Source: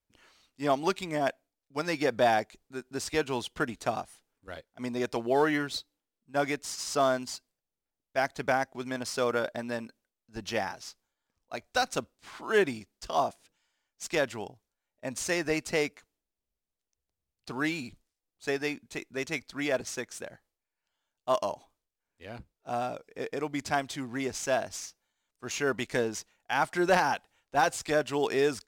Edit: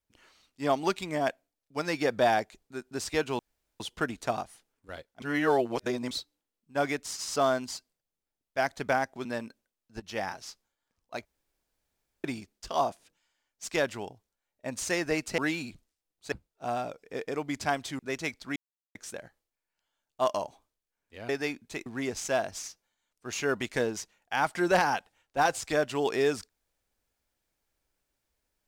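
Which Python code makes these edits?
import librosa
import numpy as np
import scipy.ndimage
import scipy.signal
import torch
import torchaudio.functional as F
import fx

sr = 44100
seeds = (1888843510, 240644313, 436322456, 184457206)

y = fx.edit(x, sr, fx.insert_room_tone(at_s=3.39, length_s=0.41),
    fx.reverse_span(start_s=4.81, length_s=0.89),
    fx.cut(start_s=8.84, length_s=0.8),
    fx.fade_in_from(start_s=10.39, length_s=0.29, floor_db=-13.0),
    fx.room_tone_fill(start_s=11.64, length_s=0.99),
    fx.cut(start_s=15.77, length_s=1.79),
    fx.swap(start_s=18.5, length_s=0.57, other_s=22.37, other_length_s=1.67),
    fx.silence(start_s=19.64, length_s=0.39), tone=tone)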